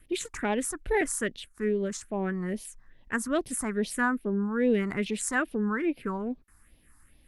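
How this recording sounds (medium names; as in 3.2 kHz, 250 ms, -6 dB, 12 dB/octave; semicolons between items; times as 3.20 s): phasing stages 4, 2.4 Hz, lowest notch 500–1400 Hz; SBC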